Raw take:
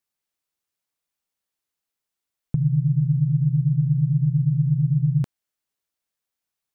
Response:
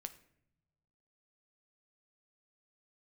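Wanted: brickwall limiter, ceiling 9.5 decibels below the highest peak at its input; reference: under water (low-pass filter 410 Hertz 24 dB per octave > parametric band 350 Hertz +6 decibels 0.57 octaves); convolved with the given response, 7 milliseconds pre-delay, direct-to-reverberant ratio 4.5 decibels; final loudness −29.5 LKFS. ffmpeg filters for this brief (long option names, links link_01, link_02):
-filter_complex "[0:a]alimiter=limit=-21.5dB:level=0:latency=1,asplit=2[link_01][link_02];[1:a]atrim=start_sample=2205,adelay=7[link_03];[link_02][link_03]afir=irnorm=-1:irlink=0,volume=-0.5dB[link_04];[link_01][link_04]amix=inputs=2:normalize=0,lowpass=frequency=410:width=0.5412,lowpass=frequency=410:width=1.3066,equalizer=frequency=350:width_type=o:width=0.57:gain=6,volume=-6.5dB"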